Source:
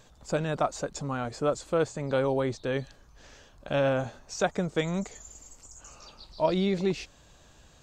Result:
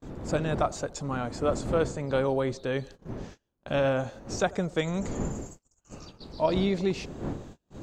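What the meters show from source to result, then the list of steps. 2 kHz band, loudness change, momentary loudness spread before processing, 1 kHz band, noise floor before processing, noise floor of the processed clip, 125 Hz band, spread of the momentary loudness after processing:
0.0 dB, 0.0 dB, 21 LU, 0.0 dB, -57 dBFS, -79 dBFS, +1.5 dB, 15 LU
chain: wind noise 320 Hz -38 dBFS; narrowing echo 88 ms, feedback 59%, band-pass 520 Hz, level -20.5 dB; gate -44 dBFS, range -31 dB

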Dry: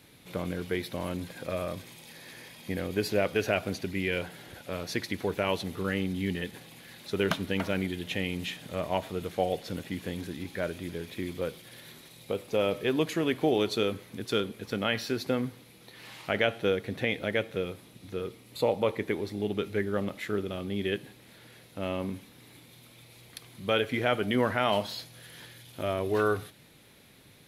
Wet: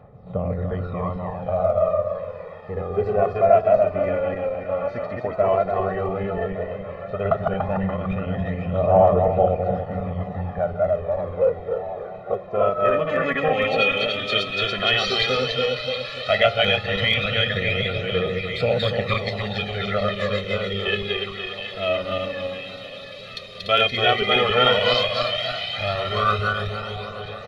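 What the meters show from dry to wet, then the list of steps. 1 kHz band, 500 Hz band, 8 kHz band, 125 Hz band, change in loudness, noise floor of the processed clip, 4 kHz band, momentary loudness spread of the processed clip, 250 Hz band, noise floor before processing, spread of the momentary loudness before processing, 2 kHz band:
+12.5 dB, +10.0 dB, n/a, +9.0 dB, +9.0 dB, -37 dBFS, +13.5 dB, 12 LU, +2.0 dB, -55 dBFS, 19 LU, +10.0 dB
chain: regenerating reverse delay 0.145 s, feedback 69%, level -1.5 dB; comb 1.6 ms, depth 99%; low-pass sweep 930 Hz -> 3900 Hz, 12.38–14.46; phaser 0.11 Hz, delay 3.8 ms, feedback 63%; delay with a stepping band-pass 0.721 s, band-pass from 3000 Hz, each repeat -0.7 oct, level -7.5 dB; wow and flutter 15 cents

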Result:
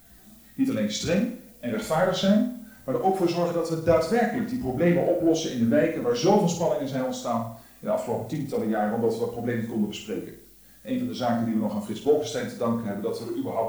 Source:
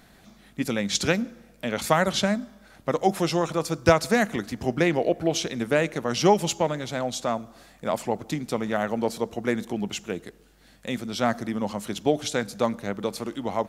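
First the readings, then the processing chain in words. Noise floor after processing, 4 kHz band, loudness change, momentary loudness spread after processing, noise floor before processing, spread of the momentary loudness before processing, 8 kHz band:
-52 dBFS, -4.5 dB, +0.5 dB, 9 LU, -55 dBFS, 11 LU, -5.0 dB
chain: chorus voices 4, 0.59 Hz, delay 17 ms, depth 2.2 ms; in parallel at -1.5 dB: limiter -17 dBFS, peak gain reduction 11 dB; on the sum: power-law curve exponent 0.7; added noise blue -34 dBFS; on a send: flutter echo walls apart 8.9 m, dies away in 0.69 s; on the sum: spectral expander 1.5:1; gain -5 dB

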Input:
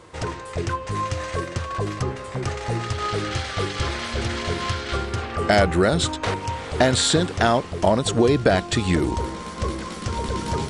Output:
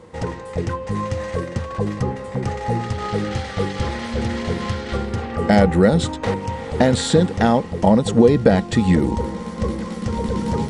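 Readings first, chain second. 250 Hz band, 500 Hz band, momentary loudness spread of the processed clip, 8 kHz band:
+6.5 dB, +3.0 dB, 11 LU, -4.5 dB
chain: low shelf 410 Hz +6 dB; small resonant body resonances 210/490/820/1900 Hz, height 11 dB, ringing for 45 ms; gain -4.5 dB

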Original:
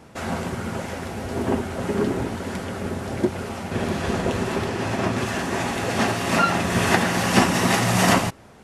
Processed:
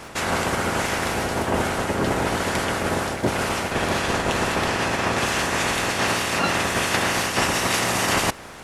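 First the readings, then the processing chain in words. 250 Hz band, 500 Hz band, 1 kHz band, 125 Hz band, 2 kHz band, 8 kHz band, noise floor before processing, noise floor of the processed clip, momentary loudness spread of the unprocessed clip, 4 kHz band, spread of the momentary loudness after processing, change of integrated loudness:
-3.5 dB, +0.5 dB, +1.5 dB, -3.0 dB, +3.0 dB, +3.5 dB, -47 dBFS, -38 dBFS, 11 LU, +4.0 dB, 3 LU, +1.0 dB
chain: spectral limiter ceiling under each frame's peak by 14 dB; reverse; compressor 6:1, threshold -28 dBFS, peak gain reduction 15.5 dB; reverse; crackle 22/s -45 dBFS; gain +8.5 dB

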